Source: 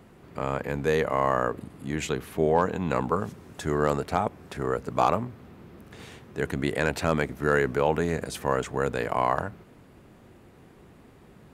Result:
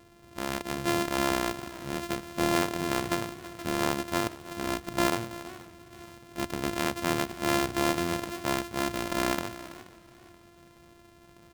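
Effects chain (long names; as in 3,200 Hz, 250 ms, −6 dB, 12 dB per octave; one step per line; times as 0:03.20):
samples sorted by size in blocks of 128 samples
single-tap delay 328 ms −16.5 dB
feedback echo with a swinging delay time 481 ms, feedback 35%, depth 132 cents, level −21 dB
level −4 dB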